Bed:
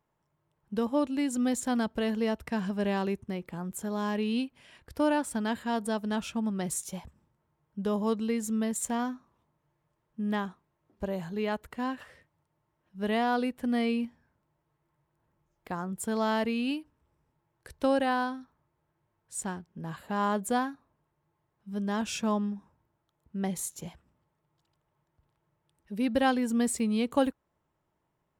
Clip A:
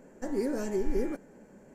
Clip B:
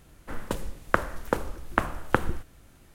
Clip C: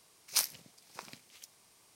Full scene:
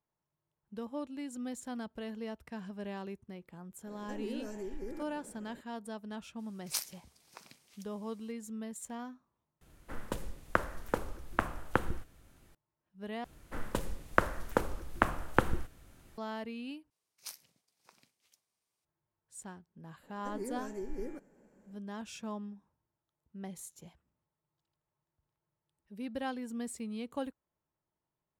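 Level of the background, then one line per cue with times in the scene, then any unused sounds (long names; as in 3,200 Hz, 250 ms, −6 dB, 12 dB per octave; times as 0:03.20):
bed −12 dB
0:03.87: mix in A −1 dB + downward compressor 2 to 1, threshold −45 dBFS
0:06.38: mix in C −6 dB, fades 0.02 s
0:09.61: overwrite with B −6.5 dB
0:13.24: overwrite with B −3.5 dB
0:16.90: overwrite with C −16 dB + downward expander −59 dBFS
0:20.03: mix in A −10.5 dB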